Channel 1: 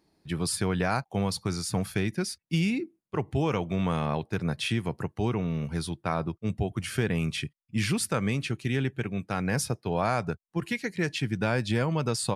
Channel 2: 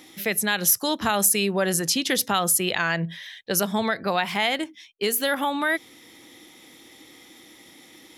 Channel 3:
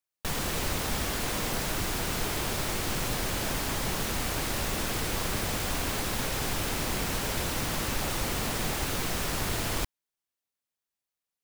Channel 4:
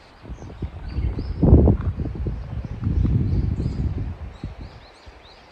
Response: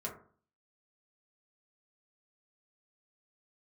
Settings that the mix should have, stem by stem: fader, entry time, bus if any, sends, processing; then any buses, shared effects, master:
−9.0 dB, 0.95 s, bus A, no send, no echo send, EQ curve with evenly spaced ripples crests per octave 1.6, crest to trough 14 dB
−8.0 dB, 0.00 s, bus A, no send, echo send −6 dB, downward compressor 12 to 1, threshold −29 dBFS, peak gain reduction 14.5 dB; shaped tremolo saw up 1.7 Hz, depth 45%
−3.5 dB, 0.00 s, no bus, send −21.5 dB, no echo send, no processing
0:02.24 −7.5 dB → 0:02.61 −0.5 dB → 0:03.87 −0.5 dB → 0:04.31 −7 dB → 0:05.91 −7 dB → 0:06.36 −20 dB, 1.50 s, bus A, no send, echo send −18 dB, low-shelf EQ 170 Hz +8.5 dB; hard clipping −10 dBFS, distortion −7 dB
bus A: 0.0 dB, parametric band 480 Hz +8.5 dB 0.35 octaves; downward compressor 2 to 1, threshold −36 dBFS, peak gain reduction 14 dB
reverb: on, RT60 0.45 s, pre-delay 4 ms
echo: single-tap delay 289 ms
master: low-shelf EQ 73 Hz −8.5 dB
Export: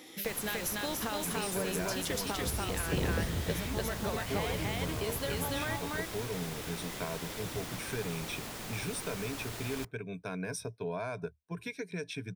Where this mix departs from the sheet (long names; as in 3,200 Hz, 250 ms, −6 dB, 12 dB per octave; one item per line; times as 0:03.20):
stem 2 −8.0 dB → +1.5 dB
stem 3 −3.5 dB → −11.0 dB
stem 4 −7.5 dB → −14.0 dB